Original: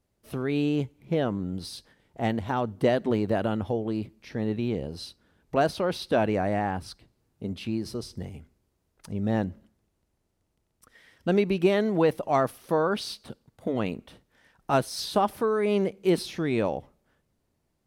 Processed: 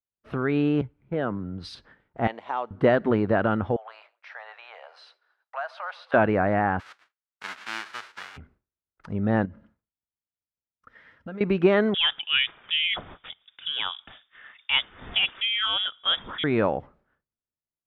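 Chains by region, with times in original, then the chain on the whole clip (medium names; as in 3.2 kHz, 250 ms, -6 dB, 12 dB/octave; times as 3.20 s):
0.81–1.75 s: compression 2:1, threshold -30 dBFS + three bands expanded up and down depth 100%
2.27–2.71 s: high-pass 760 Hz + peaking EQ 1.5 kHz -13.5 dB 0.65 oct
3.76–6.14 s: steep high-pass 660 Hz 48 dB/octave + compression 2:1, threshold -43 dBFS + frequency-shifting echo 135 ms, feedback 55%, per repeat -37 Hz, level -21 dB
6.79–8.36 s: formants flattened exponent 0.1 + high-pass 1.4 kHz 6 dB/octave
9.45–11.41 s: comb of notches 380 Hz + compression 4:1, threshold -39 dBFS
11.94–16.44 s: frequency inversion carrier 3.6 kHz + tape noise reduction on one side only encoder only
whole clip: low-pass 2.4 kHz 12 dB/octave; peaking EQ 1.4 kHz +9 dB 0.88 oct; expander -56 dBFS; trim +2.5 dB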